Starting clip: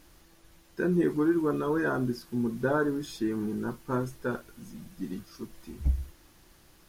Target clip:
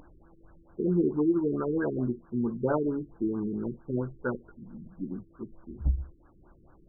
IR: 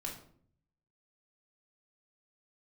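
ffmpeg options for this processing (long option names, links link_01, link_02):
-af "highshelf=frequency=2400:gain=10,acompressor=mode=upward:threshold=-44dB:ratio=2.5,afftfilt=real='re*lt(b*sr/1024,430*pow(1700/430,0.5+0.5*sin(2*PI*4.5*pts/sr)))':imag='im*lt(b*sr/1024,430*pow(1700/430,0.5+0.5*sin(2*PI*4.5*pts/sr)))':win_size=1024:overlap=0.75"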